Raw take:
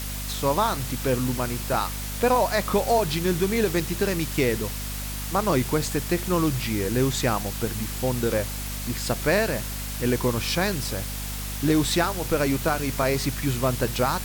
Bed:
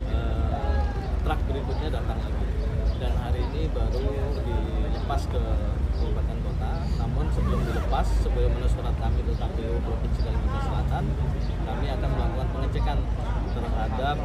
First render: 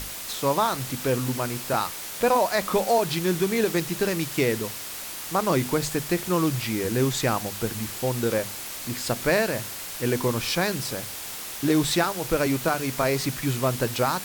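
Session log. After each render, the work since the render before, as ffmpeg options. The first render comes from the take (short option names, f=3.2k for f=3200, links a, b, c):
-af "bandreject=f=50:t=h:w=6,bandreject=f=100:t=h:w=6,bandreject=f=150:t=h:w=6,bandreject=f=200:t=h:w=6,bandreject=f=250:t=h:w=6"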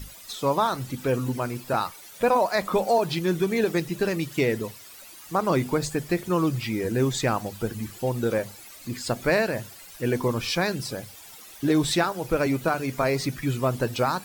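-af "afftdn=nr=14:nf=-36"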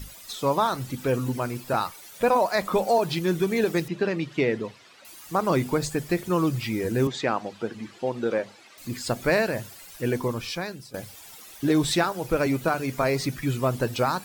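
-filter_complex "[0:a]asettb=1/sr,asplit=3[a][b][c];[a]atrim=end=3.884[d];[b]atrim=start=3.88:end=5.05,asetpts=PTS-STARTPTS,afade=t=in:d=0.004:c=qsin,afade=t=out:st=1.166:d=0.004:c=qsin,highpass=130,lowpass=3.8k[e];[c]atrim=start=5.046[f];[d][e]acrossfade=d=0.004:c1=hsin:c2=qsin[g];[g][f]acrossfade=d=0.004:c1=qsin:c2=hsin,asettb=1/sr,asplit=3[h][i][j];[h]atrim=end=7.074[k];[i]atrim=start=7.07:end=8.78,asetpts=PTS-STARTPTS,afade=t=in:d=0.004:c=qsin,afade=t=out:st=1.706:d=0.004:c=qsin,highpass=220,lowpass=4.2k[l];[j]atrim=start=8.776[m];[k][l]acrossfade=d=0.004:c1=hsin:c2=qsin[n];[n][m]acrossfade=d=0.004:c1=qsin:c2=hsin,asplit=2[o][p];[o]atrim=end=10.94,asetpts=PTS-STARTPTS,afade=t=out:st=10:d=0.94:silence=0.158489[q];[p]atrim=start=10.94,asetpts=PTS-STARTPTS,afade=t=in:d=0.004:c=hsin:silence=0.158489[r];[q][r]concat=n=2:v=0:a=1"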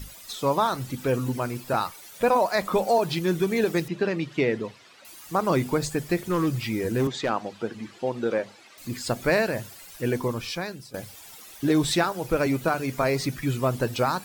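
-filter_complex "[0:a]asplit=3[a][b][c];[a]afade=t=out:st=6.16:d=0.02[d];[b]asoftclip=type=hard:threshold=-18.5dB,afade=t=in:st=6.16:d=0.02,afade=t=out:st=7.29:d=0.02[e];[c]afade=t=in:st=7.29:d=0.02[f];[d][e][f]amix=inputs=3:normalize=0"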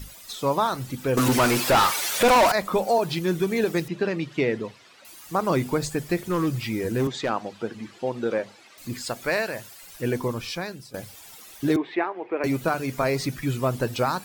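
-filter_complex "[0:a]asettb=1/sr,asplit=3[a][b][c];[a]atrim=end=1.174[d];[b]atrim=start=1.17:end=2.52,asetpts=PTS-STARTPTS,afade=t=in:d=0.004:c=qsin,afade=t=out:st=1.346:d=0.004:c=qsin,asplit=2[e][f];[f]highpass=f=720:p=1,volume=29dB,asoftclip=type=tanh:threshold=-11dB[g];[e][g]amix=inputs=2:normalize=0,lowpass=f=7k:p=1,volume=-6dB[h];[c]atrim=start=2.516[i];[d][h]acrossfade=d=0.004:c1=hsin:c2=qsin[j];[j][i]acrossfade=d=0.004:c1=qsin:c2=hsin,asettb=1/sr,asplit=3[k][l][m];[k]atrim=end=9.054[n];[l]atrim=start=9.05:end=9.83,asetpts=PTS-STARTPTS,afade=t=in:d=0.004:c=qsin,afade=t=out:st=0.776:d=0.004:c=qsin,lowshelf=f=420:g=-10[o];[m]atrim=start=9.826[p];[n][o]acrossfade=d=0.004:c1=hsin:c2=qsin[q];[q][p]acrossfade=d=0.004:c1=qsin:c2=hsin,asettb=1/sr,asplit=3[r][s][t];[r]atrim=end=11.764[u];[s]atrim=start=11.76:end=12.44,asetpts=PTS-STARTPTS,afade=t=in:d=0.004:c=qsin,afade=t=out:st=0.676:d=0.004:c=qsin,highpass=f=320:w=0.5412,highpass=f=320:w=1.3066,equalizer=f=370:t=q:w=4:g=3,equalizer=f=540:t=q:w=4:g=-7,equalizer=f=1.4k:t=q:w=4:g=-8,equalizer=f=2.1k:t=q:w=4:g=4,lowpass=f=2.3k:w=0.5412,lowpass=f=2.3k:w=1.3066[v];[t]atrim=start=12.436[w];[u][v]acrossfade=d=0.004:c1=hsin:c2=qsin[x];[x][w]acrossfade=d=0.004:c1=qsin:c2=hsin"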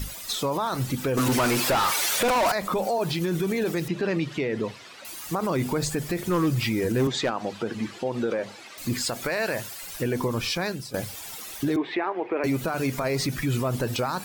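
-filter_complex "[0:a]asplit=2[a][b];[b]acompressor=threshold=-28dB:ratio=6,volume=2dB[c];[a][c]amix=inputs=2:normalize=0,alimiter=limit=-17.5dB:level=0:latency=1:release=42"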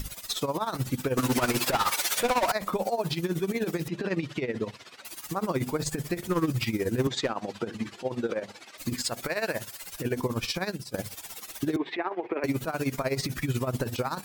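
-af "tremolo=f=16:d=0.77"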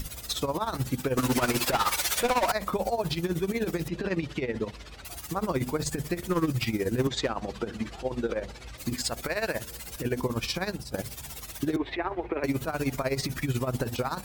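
-filter_complex "[1:a]volume=-21.5dB[a];[0:a][a]amix=inputs=2:normalize=0"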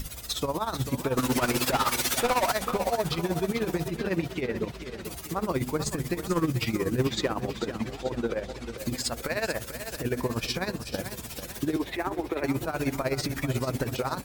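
-af "aecho=1:1:441|882|1323|1764|2205|2646:0.316|0.164|0.0855|0.0445|0.0231|0.012"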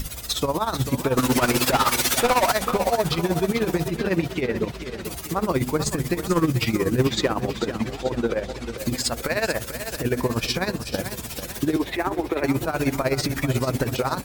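-af "volume=5.5dB"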